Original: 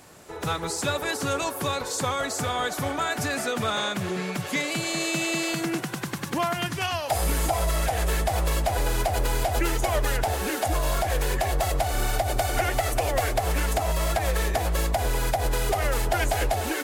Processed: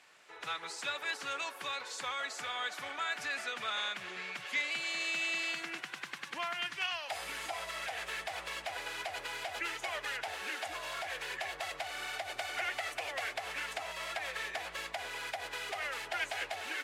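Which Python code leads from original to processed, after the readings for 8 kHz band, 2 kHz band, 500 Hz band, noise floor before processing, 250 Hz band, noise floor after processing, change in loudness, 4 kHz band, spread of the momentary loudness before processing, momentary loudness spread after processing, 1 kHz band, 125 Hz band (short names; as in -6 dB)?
-15.5 dB, -5.0 dB, -17.0 dB, -35 dBFS, -23.5 dB, -50 dBFS, -11.0 dB, -6.5 dB, 3 LU, 5 LU, -12.5 dB, -33.5 dB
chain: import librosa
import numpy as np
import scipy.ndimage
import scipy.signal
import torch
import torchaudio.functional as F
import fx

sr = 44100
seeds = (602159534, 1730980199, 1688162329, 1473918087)

y = fx.bandpass_q(x, sr, hz=2400.0, q=1.2)
y = y * 10.0 ** (-3.5 / 20.0)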